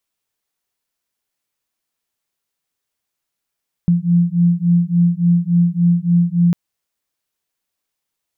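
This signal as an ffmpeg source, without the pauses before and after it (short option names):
-f lavfi -i "aevalsrc='0.188*(sin(2*PI*171*t)+sin(2*PI*174.5*t))':d=2.65:s=44100"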